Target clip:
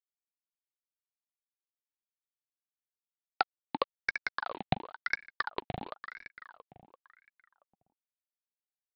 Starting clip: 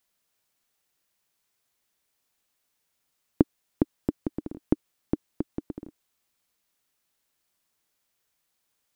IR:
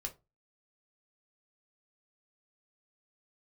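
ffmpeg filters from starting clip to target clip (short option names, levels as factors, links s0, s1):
-filter_complex "[0:a]highshelf=f=2500:g=8.5,asplit=2[s0][s1];[s1]acompressor=threshold=0.0251:ratio=8,volume=1.12[s2];[s0][s2]amix=inputs=2:normalize=0,acrusher=bits=7:mix=0:aa=0.000001,adynamicsmooth=sensitivity=1:basefreq=1400,aexciter=amount=12.6:drive=8.8:freq=2000,aresample=8000,volume=2.66,asoftclip=hard,volume=0.376,aresample=44100,asplit=2[s3][s4];[s4]adelay=339,lowpass=f=2400:p=1,volume=0.447,asplit=2[s5][s6];[s6]adelay=339,lowpass=f=2400:p=1,volume=0.52,asplit=2[s7][s8];[s8]adelay=339,lowpass=f=2400:p=1,volume=0.52,asplit=2[s9][s10];[s10]adelay=339,lowpass=f=2400:p=1,volume=0.52,asplit=2[s11][s12];[s12]adelay=339,lowpass=f=2400:p=1,volume=0.52,asplit=2[s13][s14];[s14]adelay=339,lowpass=f=2400:p=1,volume=0.52[s15];[s3][s5][s7][s9][s11][s13][s15]amix=inputs=7:normalize=0,aeval=exprs='val(0)*sin(2*PI*1200*n/s+1200*0.65/0.96*sin(2*PI*0.96*n/s))':c=same,volume=0.596"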